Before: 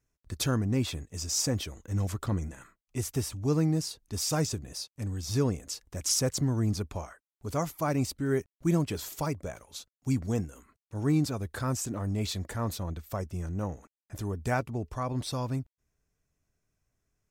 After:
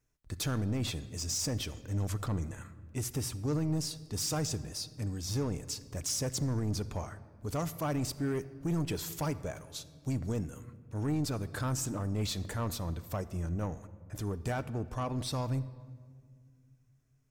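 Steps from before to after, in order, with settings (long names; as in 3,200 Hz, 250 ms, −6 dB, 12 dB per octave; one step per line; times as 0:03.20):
brickwall limiter −21.5 dBFS, peak gain reduction 6 dB
soft clipping −27 dBFS, distortion −15 dB
rectangular room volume 3,200 cubic metres, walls mixed, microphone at 0.46 metres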